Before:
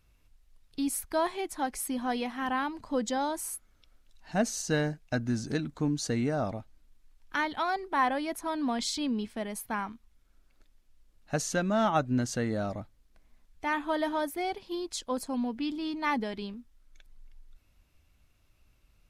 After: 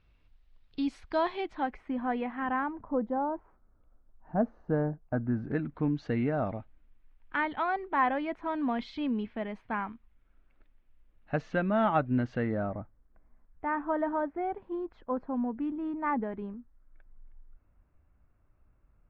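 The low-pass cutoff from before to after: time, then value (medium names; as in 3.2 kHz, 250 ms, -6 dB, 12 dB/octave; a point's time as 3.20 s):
low-pass 24 dB/octave
1.40 s 4 kHz
1.82 s 2.2 kHz
2.51 s 2.2 kHz
2.98 s 1.2 kHz
5.04 s 1.2 kHz
5.85 s 2.7 kHz
12.39 s 2.7 kHz
12.81 s 1.6 kHz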